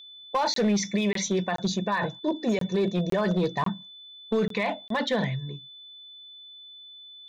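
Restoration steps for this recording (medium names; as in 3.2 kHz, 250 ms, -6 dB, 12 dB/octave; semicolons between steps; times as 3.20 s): clip repair -18.5 dBFS; band-stop 3.5 kHz, Q 30; interpolate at 0.54/1.13/1.56/2.59/3.10/3.64/4.48/4.88 s, 23 ms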